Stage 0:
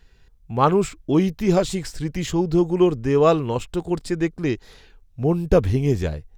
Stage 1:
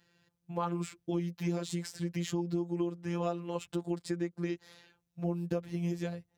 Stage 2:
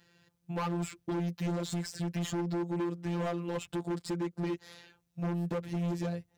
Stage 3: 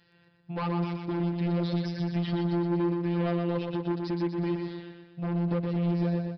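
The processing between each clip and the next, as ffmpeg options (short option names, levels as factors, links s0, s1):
-af "afftfilt=real='hypot(re,im)*cos(PI*b)':imag='0':win_size=1024:overlap=0.75,highpass=f=83:w=0.5412,highpass=f=83:w=1.3066,acompressor=threshold=0.0501:ratio=6,volume=0.631"
-af "asoftclip=type=hard:threshold=0.02,volume=1.68"
-af "aresample=11025,aresample=44100,aecho=1:1:122|244|366|488|610|732|854:0.562|0.292|0.152|0.0791|0.0411|0.0214|0.0111,volume=1.12"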